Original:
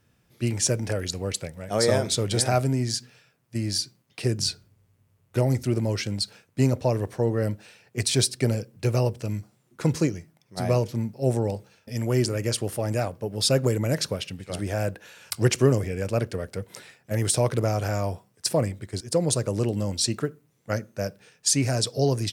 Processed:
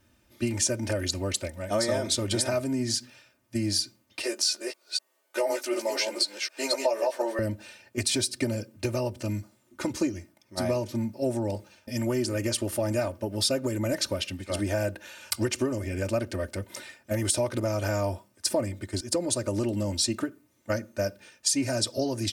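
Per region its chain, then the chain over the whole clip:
4.22–7.39 s: chunks repeated in reverse 250 ms, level -4 dB + high-pass 450 Hz 24 dB/octave + doubling 14 ms -4 dB
whole clip: compression 5:1, threshold -25 dBFS; comb 3.3 ms, depth 97%

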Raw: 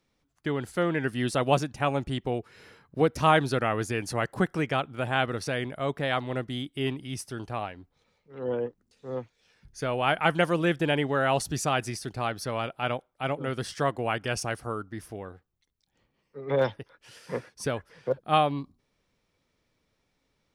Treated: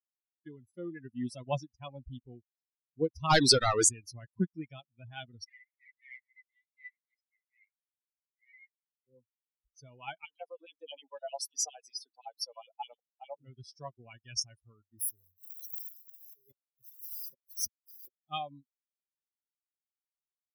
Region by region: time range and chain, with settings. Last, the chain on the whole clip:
3.30–3.89 s: peaking EQ 8.1 kHz +14 dB 0.26 oct + overdrive pedal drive 24 dB, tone 3.9 kHz, clips at -8 dBFS
5.44–9.07 s: square wave that keeps the level + ladder band-pass 2.1 kHz, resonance 85%
10.25–13.35 s: compression 4:1, threshold -28 dBFS + LFO high-pass square 9.7 Hz 790–2900 Hz + small resonant body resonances 290/460 Hz, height 17 dB, ringing for 40 ms
14.99–18.25 s: zero-crossing glitches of -29.5 dBFS + inverted gate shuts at -21 dBFS, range -29 dB
whole clip: expander on every frequency bin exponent 3; FFT filter 250 Hz 0 dB, 720 Hz -5 dB, 2.9 kHz -5 dB, 4.9 kHz +13 dB, 8.6 kHz +6 dB

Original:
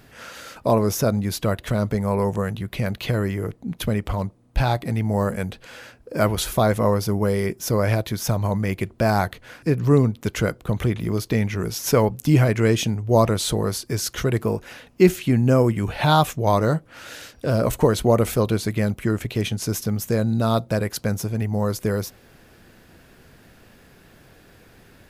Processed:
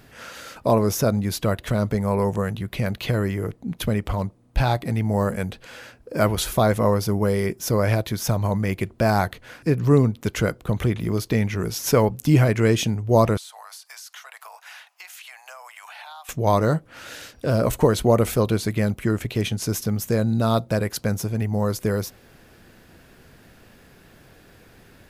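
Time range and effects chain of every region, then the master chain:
13.37–16.29 s: steep high-pass 720 Hz 48 dB/octave + compression 16:1, threshold -37 dBFS
whole clip: none

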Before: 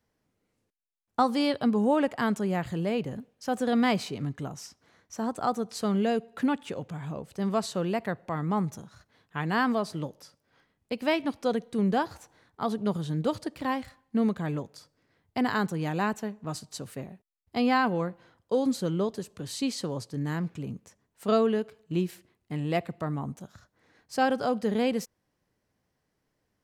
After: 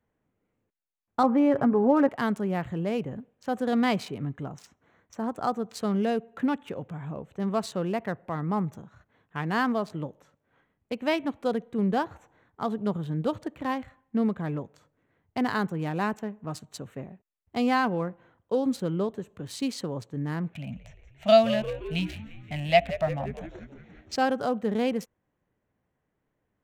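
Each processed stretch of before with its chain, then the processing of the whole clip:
1.23–2.09 s: low-pass 1.9 kHz 24 dB/octave + comb 7.3 ms, depth 53% + level flattener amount 50%
20.53–24.16 s: FFT filter 250 Hz 0 dB, 400 Hz -26 dB, 640 Hz +13 dB, 1.1 kHz -6 dB, 2.4 kHz +13 dB, 5.7 kHz +8 dB, 9.2 kHz -5 dB + frequency-shifting echo 174 ms, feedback 65%, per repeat -91 Hz, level -13.5 dB
whole clip: local Wiener filter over 9 samples; treble shelf 11 kHz +3 dB

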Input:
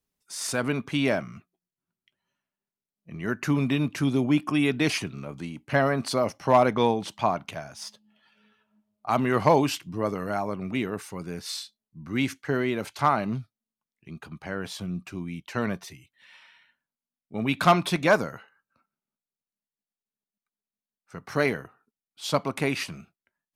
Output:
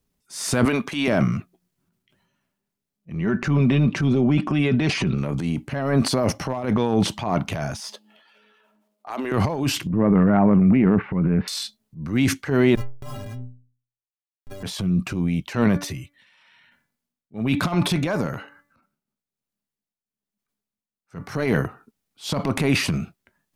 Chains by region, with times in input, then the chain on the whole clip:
0.65–1.08 s: high-pass 170 Hz + bass shelf 420 Hz -11.5 dB + band-stop 1.4 kHz, Q 18
3.20–5.18 s: comb 5.2 ms, depth 43% + compression, threshold -25 dBFS + distance through air 98 m
7.80–9.32 s: high-pass 330 Hz 24 dB/octave + compression 10:1, threshold -31 dBFS
9.90–11.48 s: steep low-pass 2.4 kHz + peaking EQ 200 Hz +7.5 dB 0.64 oct
12.75–14.63 s: Schmitt trigger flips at -25 dBFS + inharmonic resonator 120 Hz, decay 0.47 s, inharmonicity 0.03
15.64–21.36 s: de-hum 288.2 Hz, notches 8 + tremolo triangle 1.1 Hz, depth 80%
whole clip: compressor with a negative ratio -25 dBFS, ratio -0.5; transient shaper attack -8 dB, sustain +8 dB; bass shelf 370 Hz +9 dB; trim +3.5 dB

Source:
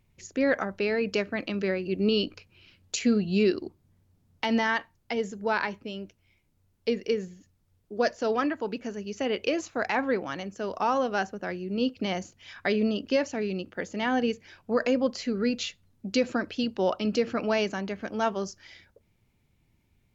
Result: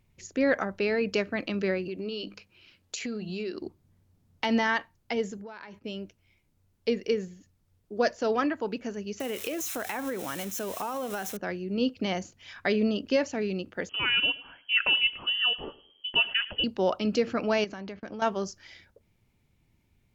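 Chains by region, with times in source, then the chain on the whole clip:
1.88–3.62 s: bass shelf 180 Hz -9 dB + hum notches 50/100/150/200 Hz + compression 5:1, threshold -31 dBFS
5.37–5.84 s: gate -52 dBFS, range -9 dB + compression 10:1, threshold -39 dBFS
9.20–11.37 s: zero-crossing glitches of -26 dBFS + band-stop 4.6 kHz, Q 6.1 + compression 10:1, threshold -28 dBFS
13.89–16.64 s: feedback delay 106 ms, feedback 31%, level -19.5 dB + frequency inversion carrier 3.2 kHz
17.64–18.22 s: gate -44 dBFS, range -24 dB + Chebyshev low-pass 5.5 kHz, order 3 + compression 10:1, threshold -34 dBFS
whole clip: none

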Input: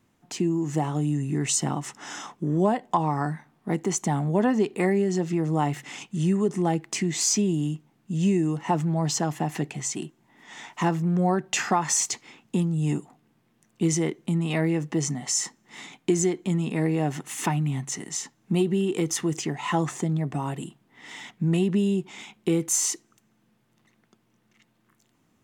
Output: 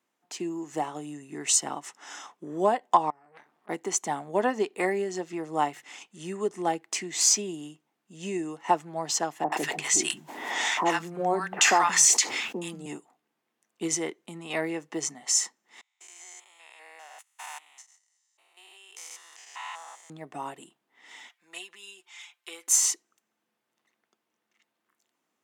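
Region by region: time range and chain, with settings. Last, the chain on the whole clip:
3.10–3.69 s: treble shelf 3.3 kHz -7 dB + compressor with a negative ratio -40 dBFS + transformer saturation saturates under 1.4 kHz
9.44–12.86 s: three bands offset in time mids, highs, lows 80/180 ms, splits 160/1100 Hz + level flattener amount 70%
15.81–20.10 s: spectrogram pixelated in time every 200 ms + gate -36 dBFS, range -24 dB + high-pass 820 Hz 24 dB/octave
21.29–22.68 s: high-pass 1.3 kHz + comb 5.8 ms, depth 87%
whole clip: high-pass 440 Hz 12 dB/octave; upward expansion 1.5:1, over -44 dBFS; trim +4.5 dB

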